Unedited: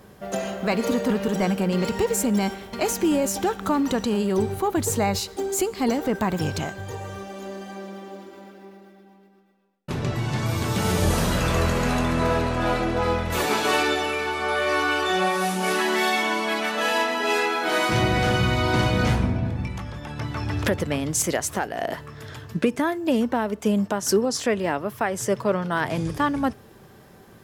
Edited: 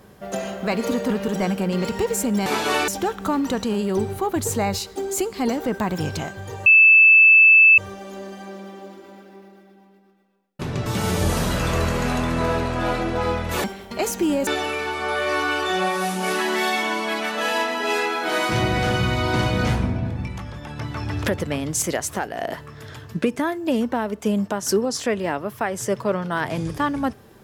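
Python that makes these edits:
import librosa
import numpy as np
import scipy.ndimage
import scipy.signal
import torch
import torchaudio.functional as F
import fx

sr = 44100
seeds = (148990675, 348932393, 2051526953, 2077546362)

y = fx.edit(x, sr, fx.swap(start_s=2.46, length_s=0.83, other_s=13.45, other_length_s=0.42),
    fx.insert_tone(at_s=7.07, length_s=1.12, hz=2630.0, db=-8.0),
    fx.cut(start_s=10.15, length_s=0.52), tone=tone)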